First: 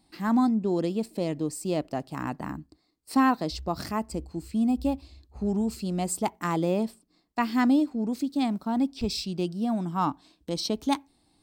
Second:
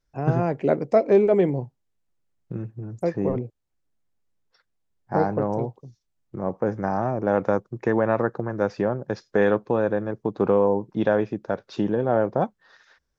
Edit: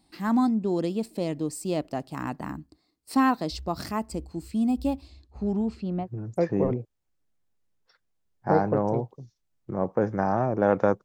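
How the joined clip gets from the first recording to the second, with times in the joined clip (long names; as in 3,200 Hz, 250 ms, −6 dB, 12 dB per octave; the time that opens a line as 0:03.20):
first
0:05.09–0:06.09: low-pass filter 11,000 Hz → 1,300 Hz
0:06.04: continue with second from 0:02.69, crossfade 0.10 s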